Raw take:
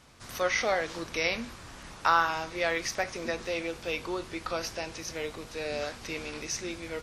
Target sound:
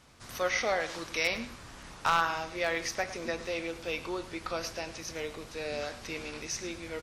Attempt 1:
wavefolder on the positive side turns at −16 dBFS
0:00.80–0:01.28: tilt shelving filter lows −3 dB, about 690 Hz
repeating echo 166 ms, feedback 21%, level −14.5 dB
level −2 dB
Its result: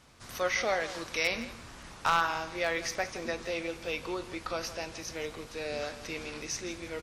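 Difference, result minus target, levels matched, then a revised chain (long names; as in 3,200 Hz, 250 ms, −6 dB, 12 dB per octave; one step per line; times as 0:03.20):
echo 58 ms late
wavefolder on the positive side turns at −16 dBFS
0:00.80–0:01.28: tilt shelving filter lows −3 dB, about 690 Hz
repeating echo 108 ms, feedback 21%, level −14.5 dB
level −2 dB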